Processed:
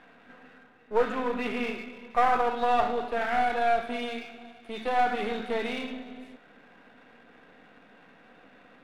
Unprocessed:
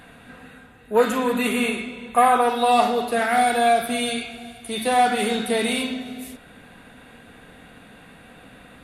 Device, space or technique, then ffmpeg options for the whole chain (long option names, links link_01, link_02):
crystal radio: -af "highpass=240,lowpass=2500,aeval=exprs='if(lt(val(0),0),0.447*val(0),val(0))':channel_layout=same,volume=-4dB"